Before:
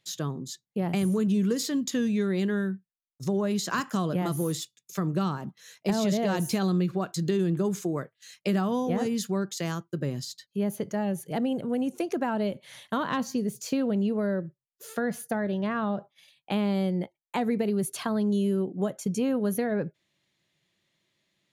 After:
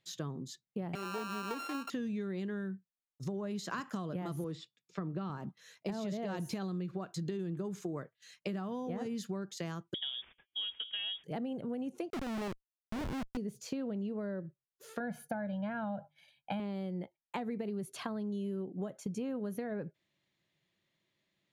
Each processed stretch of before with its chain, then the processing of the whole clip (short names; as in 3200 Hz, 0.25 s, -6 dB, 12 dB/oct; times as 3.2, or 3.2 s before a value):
0.95–1.9 sample sorter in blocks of 32 samples + HPF 280 Hz 24 dB/oct + de-esser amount 50%
4.44–5.3 HPF 120 Hz + air absorption 140 m + notch 6300 Hz, Q 10
9.94–11.24 median filter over 15 samples + de-hum 216.3 Hz, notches 6 + inverted band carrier 3500 Hz
12.1–13.37 LPF 1000 Hz + Schmitt trigger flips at -32 dBFS
15–16.6 bell 6000 Hz -6.5 dB 1.5 oct + notches 50/100/150 Hz + comb 1.3 ms, depth 93%
whole clip: LPF 3800 Hz 6 dB/oct; compressor, threshold -30 dBFS; gain -4.5 dB